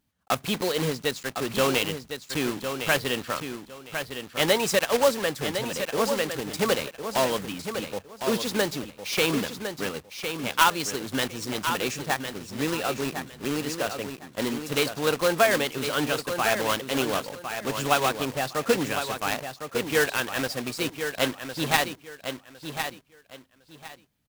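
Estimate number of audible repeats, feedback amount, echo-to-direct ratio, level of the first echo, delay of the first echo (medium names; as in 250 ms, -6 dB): 3, 23%, -8.0 dB, -8.0 dB, 1057 ms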